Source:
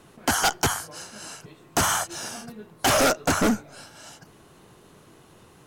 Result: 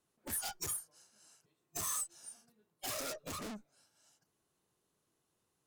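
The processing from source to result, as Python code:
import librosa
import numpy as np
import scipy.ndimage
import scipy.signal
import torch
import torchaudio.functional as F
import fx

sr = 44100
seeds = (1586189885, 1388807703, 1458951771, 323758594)

y = fx.noise_reduce_blind(x, sr, reduce_db=29)
y = fx.tube_stage(y, sr, drive_db=42.0, bias=0.35)
y = fx.bass_treble(y, sr, bass_db=-2, treble_db=9)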